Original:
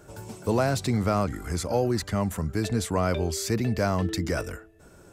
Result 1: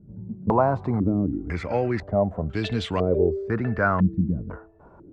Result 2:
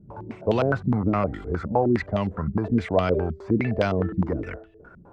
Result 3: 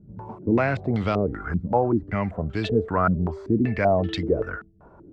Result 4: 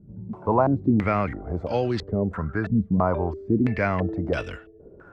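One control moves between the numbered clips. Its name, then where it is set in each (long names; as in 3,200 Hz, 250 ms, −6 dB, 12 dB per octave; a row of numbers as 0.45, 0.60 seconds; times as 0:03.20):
low-pass on a step sequencer, speed: 2, 9.7, 5.2, 3 Hertz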